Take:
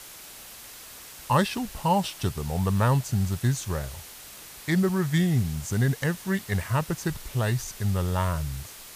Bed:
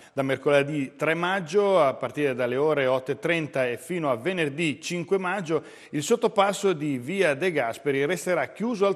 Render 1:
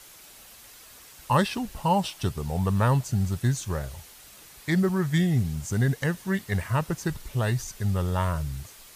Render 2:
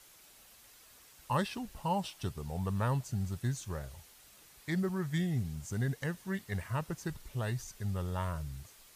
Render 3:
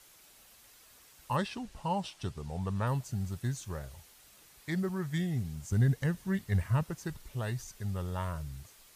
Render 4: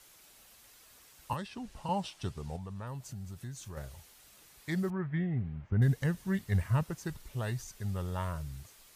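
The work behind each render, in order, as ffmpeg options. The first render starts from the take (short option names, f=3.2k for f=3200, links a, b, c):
-af "afftdn=nr=6:nf=-45"
-af "volume=-9.5dB"
-filter_complex "[0:a]asettb=1/sr,asplit=3[a][b][c];[a]atrim=end=1.364[d];[b]atrim=start=1.36:end=2.87,asetpts=PTS-STARTPTS,afade=t=in:d=0.004:c=qsin,afade=t=out:st=1.506:d=0.004:c=qsin,lowpass=8.7k[e];[c]atrim=start=2.866[f];[d][e]acrossfade=d=0.004:c1=hsin:c2=qsin[g];[g][f]acrossfade=d=0.004:c1=qsin:c2=hsin,asettb=1/sr,asplit=3[h][i][j];[h]atrim=end=5.724[k];[i]atrim=start=5.72:end=6.83,asetpts=PTS-STARTPTS,afade=t=in:d=0.004:c=qsin,afade=t=out:st=1.106:d=0.004:c=qsin,lowshelf=f=180:g=11.5[l];[j]atrim=start=6.826[m];[k][l]acrossfade=d=0.004:c1=hsin:c2=qsin[n];[n][m]acrossfade=d=0.004:c1=qsin:c2=hsin"
-filter_complex "[0:a]asettb=1/sr,asplit=3[a][b][c];[a]atrim=end=1.334[d];[b]atrim=start=1.33:end=1.89,asetpts=PTS-STARTPTS,afade=t=in:d=0.004:c=qsin,afade=t=out:st=0.556:d=0.004:c=qsin,acrossover=split=250|1900|4200[e][f][g][h];[e]acompressor=threshold=-42dB:ratio=3[i];[f]acompressor=threshold=-42dB:ratio=3[j];[g]acompressor=threshold=-53dB:ratio=3[k];[h]acompressor=threshold=-57dB:ratio=3[l];[i][j][k][l]amix=inputs=4:normalize=0[m];[c]atrim=start=1.886[n];[d][m]acrossfade=d=0.004:c1=hsin:c2=qsin[o];[o][n]acrossfade=d=0.004:c1=qsin:c2=hsin,asettb=1/sr,asplit=3[p][q][r];[p]atrim=end=2.564[s];[q]atrim=start=2.56:end=3.77,asetpts=PTS-STARTPTS,afade=t=in:d=0.004:c=qsin,afade=t=out:st=1.206:d=0.004:c=qsin,acompressor=threshold=-42dB:ratio=2.5:attack=3.2:release=140:knee=1:detection=peak[t];[r]atrim=start=3.766[u];[s][t]acrossfade=d=0.004:c1=hsin:c2=qsin[v];[v][u]acrossfade=d=0.004:c1=qsin:c2=hsin,asettb=1/sr,asplit=3[w][x][y];[w]atrim=end=4.904[z];[x]atrim=start=4.9:end=5.82,asetpts=PTS-STARTPTS,afade=t=in:d=0.004:c=qsin,afade=t=out:st=0.916:d=0.004:c=qsin,lowpass=f=2.3k:w=0.5412,lowpass=f=2.3k:w=1.3066[aa];[y]atrim=start=5.816[ab];[z][aa]acrossfade=d=0.004:c1=hsin:c2=qsin[ac];[ac][ab]acrossfade=d=0.004:c1=qsin:c2=hsin"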